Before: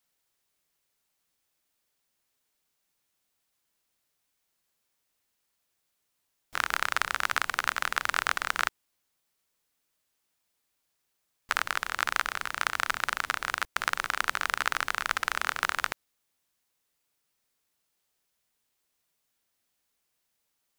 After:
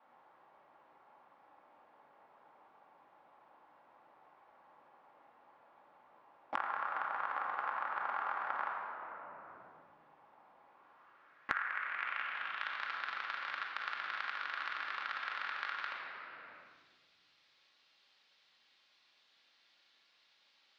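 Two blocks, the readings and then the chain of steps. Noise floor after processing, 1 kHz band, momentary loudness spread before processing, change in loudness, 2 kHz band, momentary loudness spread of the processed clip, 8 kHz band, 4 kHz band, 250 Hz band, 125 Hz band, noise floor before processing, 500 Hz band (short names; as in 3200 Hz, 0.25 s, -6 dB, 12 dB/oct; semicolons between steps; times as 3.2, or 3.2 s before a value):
-71 dBFS, -6.5 dB, 4 LU, -9.5 dB, -9.5 dB, 12 LU, under -30 dB, -13.5 dB, -10.5 dB, under -15 dB, -79 dBFS, -7.5 dB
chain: bell 65 Hz +3 dB 0.77 oct; notches 50/100/150 Hz; band-pass sweep 880 Hz -> 4200 Hz, 10.59–12.81; tape spacing loss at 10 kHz 43 dB; shoebox room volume 1100 m³, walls mixed, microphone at 2.3 m; three-band squash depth 100%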